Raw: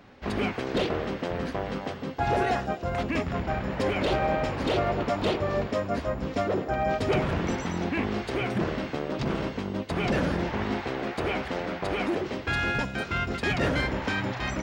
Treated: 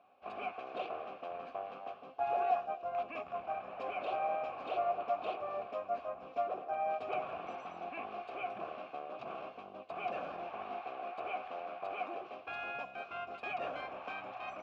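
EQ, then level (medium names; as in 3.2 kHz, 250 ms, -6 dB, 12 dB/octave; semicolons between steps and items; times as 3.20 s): vowel filter a; dynamic bell 1.8 kHz, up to +4 dB, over -51 dBFS, Q 0.79; -2.5 dB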